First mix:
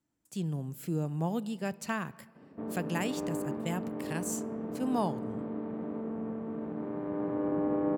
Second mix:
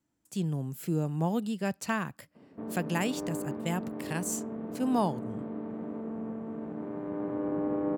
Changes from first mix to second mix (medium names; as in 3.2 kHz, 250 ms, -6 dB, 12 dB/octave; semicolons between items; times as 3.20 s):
speech +3.5 dB; reverb: off